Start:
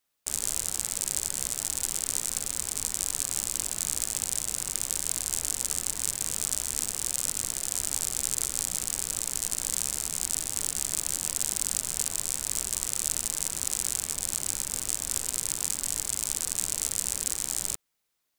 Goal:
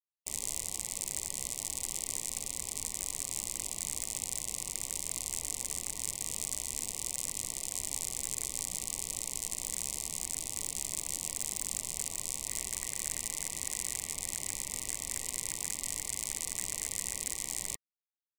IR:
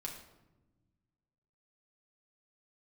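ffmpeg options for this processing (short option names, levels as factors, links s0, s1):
-af "asuperstop=centerf=1500:order=20:qfactor=2.1,highshelf=f=10000:g=-3,aeval=exprs='0.335*(abs(mod(val(0)/0.335+3,4)-2)-1)':c=same,asetnsamples=n=441:p=0,asendcmd='12.48 equalizer g 11',equalizer=f=1800:t=o:w=0.56:g=3.5,afftfilt=real='re*gte(hypot(re,im),0.00158)':imag='im*gte(hypot(re,im),0.00158)':win_size=1024:overlap=0.75,volume=0.562"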